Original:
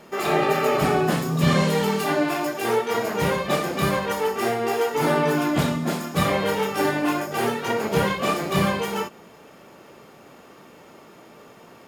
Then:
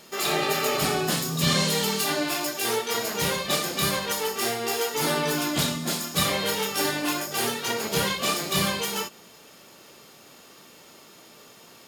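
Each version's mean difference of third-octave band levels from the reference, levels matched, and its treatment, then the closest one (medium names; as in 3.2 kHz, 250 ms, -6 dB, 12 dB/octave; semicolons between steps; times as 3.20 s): 5.0 dB: FFT filter 820 Hz 0 dB, 2.3 kHz +5 dB, 4 kHz +14 dB; trim -6 dB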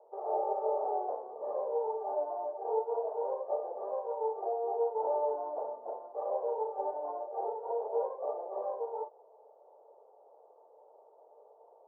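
22.0 dB: elliptic band-pass 450–900 Hz, stop band 60 dB; trim -7 dB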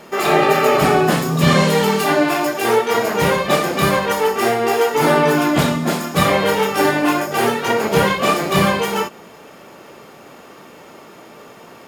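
1.0 dB: bass shelf 260 Hz -4 dB; trim +7.5 dB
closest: third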